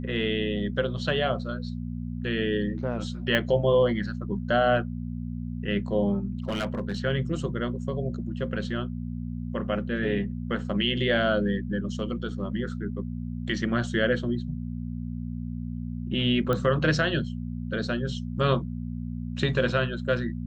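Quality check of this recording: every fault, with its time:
hum 60 Hz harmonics 4 -33 dBFS
3.35 pop -11 dBFS
6.48–6.97 clipped -24.5 dBFS
16.53 pop -15 dBFS

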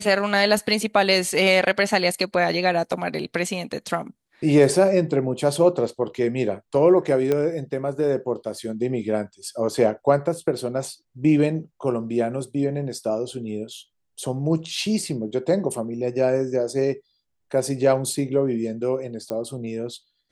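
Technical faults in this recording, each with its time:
7.32 pop -11 dBFS
19.3 pop -18 dBFS

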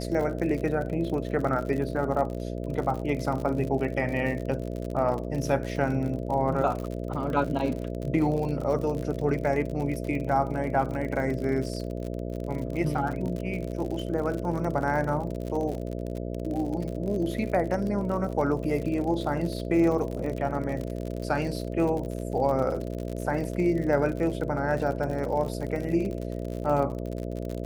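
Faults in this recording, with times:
buzz 60 Hz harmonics 11 -33 dBFS
crackle 57/s -32 dBFS

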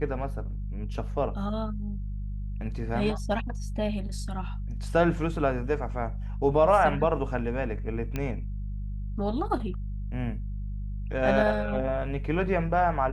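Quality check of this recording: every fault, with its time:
hum 50 Hz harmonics 4 -33 dBFS
8.16 pop -17 dBFS

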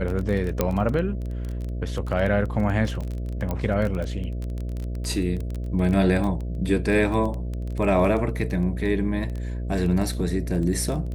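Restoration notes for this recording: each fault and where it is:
buzz 60 Hz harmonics 11 -29 dBFS
crackle 21/s -27 dBFS
0.61 pop -7 dBFS
3.51 pop -15 dBFS

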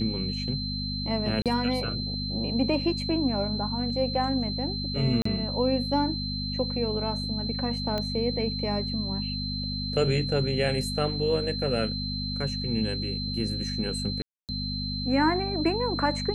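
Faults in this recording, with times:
hum 50 Hz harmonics 5 -33 dBFS
tone 4100 Hz -33 dBFS
1.42–1.46 gap 37 ms
5.22–5.25 gap 34 ms
7.98 pop -17 dBFS
14.22–14.49 gap 0.268 s

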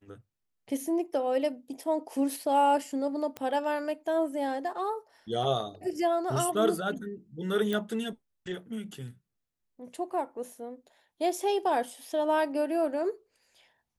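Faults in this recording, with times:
3.37 pop -21 dBFS
7.73 pop

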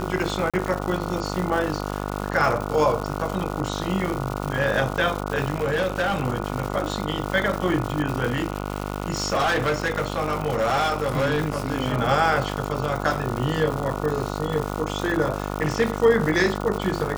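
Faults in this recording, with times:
buzz 50 Hz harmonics 29 -29 dBFS
crackle 280/s -27 dBFS
0.5–0.54 gap 36 ms
5.54–6.22 clipped -18.5 dBFS
8.25–11.7 clipped -18 dBFS

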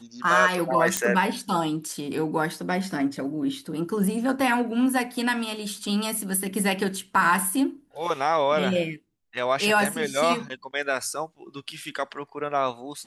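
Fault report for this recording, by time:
0.97 pop -6 dBFS

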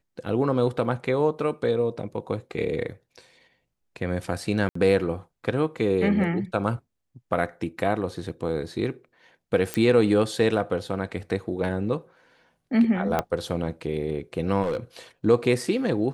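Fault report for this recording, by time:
4.69–4.75 gap 64 ms
9.74 pop -10 dBFS
13.19 pop -10 dBFS
14.62–14.77 clipped -22 dBFS

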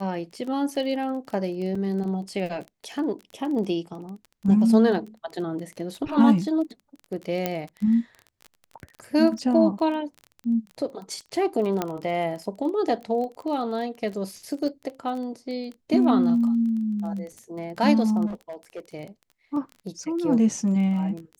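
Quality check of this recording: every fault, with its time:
crackle 20/s -32 dBFS
1.75 gap 4 ms
7.46 pop -10 dBFS
11.82 pop -11 dBFS
18.26–18.8 clipped -30 dBFS

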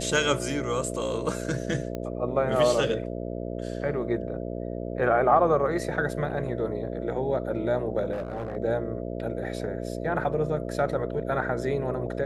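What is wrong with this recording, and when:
buzz 60 Hz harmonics 11 -33 dBFS
1.95 pop -20 dBFS
8.12–8.57 clipped -27.5 dBFS

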